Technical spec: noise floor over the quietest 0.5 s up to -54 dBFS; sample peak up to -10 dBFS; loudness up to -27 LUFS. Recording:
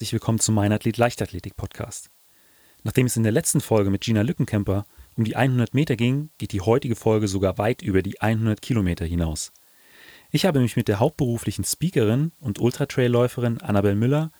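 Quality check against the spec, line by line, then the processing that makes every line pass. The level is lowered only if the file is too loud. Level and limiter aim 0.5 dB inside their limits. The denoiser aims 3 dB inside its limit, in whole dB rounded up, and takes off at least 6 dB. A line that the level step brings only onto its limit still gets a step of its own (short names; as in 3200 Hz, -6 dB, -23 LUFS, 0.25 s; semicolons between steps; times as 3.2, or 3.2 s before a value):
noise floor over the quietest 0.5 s -57 dBFS: OK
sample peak -4.0 dBFS: fail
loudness -22.5 LUFS: fail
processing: gain -5 dB; limiter -10.5 dBFS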